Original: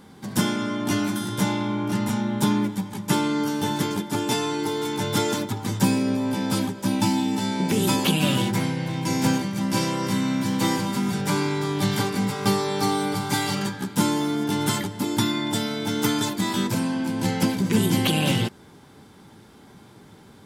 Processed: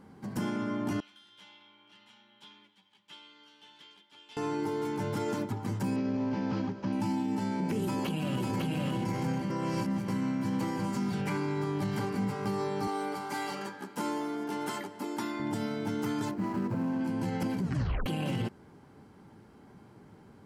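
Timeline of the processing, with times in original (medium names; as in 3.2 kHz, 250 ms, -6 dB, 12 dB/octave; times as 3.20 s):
1.00–4.37 s: band-pass filter 3.3 kHz, Q 5.2
5.96–6.93 s: CVSD coder 32 kbps
7.85–8.85 s: echo throw 550 ms, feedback 10%, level 0 dB
9.50–10.08 s: reverse
10.83–11.36 s: peaking EQ 9.7 kHz -> 1.9 kHz +8.5 dB
12.87–15.40 s: high-pass 370 Hz
16.31–17.01 s: median filter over 15 samples
17.62 s: tape stop 0.44 s
whole clip: treble shelf 2.6 kHz -11.5 dB; band-stop 3.6 kHz, Q 7.2; peak limiter -18.5 dBFS; trim -5 dB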